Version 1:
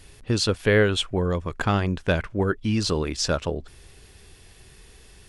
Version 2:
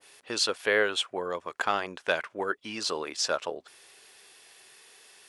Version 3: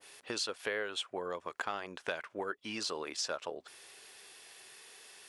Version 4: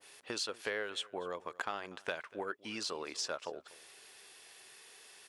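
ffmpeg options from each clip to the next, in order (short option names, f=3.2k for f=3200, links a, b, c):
-af "highpass=610,adynamicequalizer=threshold=0.01:dfrequency=1500:dqfactor=0.7:tfrequency=1500:tqfactor=0.7:attack=5:release=100:ratio=0.375:range=2:mode=cutabove:tftype=highshelf"
-af "acompressor=threshold=-36dB:ratio=3"
-af "aeval=exprs='0.141*(cos(1*acos(clip(val(0)/0.141,-1,1)))-cos(1*PI/2))+0.00224*(cos(7*acos(clip(val(0)/0.141,-1,1)))-cos(7*PI/2))':c=same,aecho=1:1:242:0.0841,volume=-1dB"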